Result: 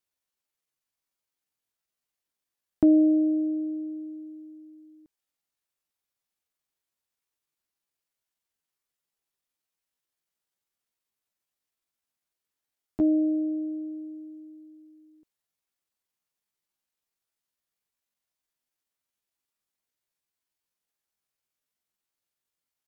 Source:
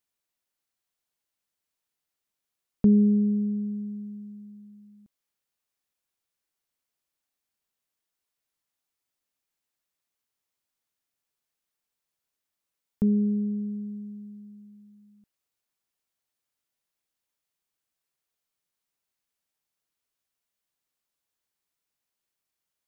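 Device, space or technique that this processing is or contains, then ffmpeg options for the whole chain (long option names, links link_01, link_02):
chipmunk voice: -af "asetrate=66075,aresample=44100,atempo=0.66742"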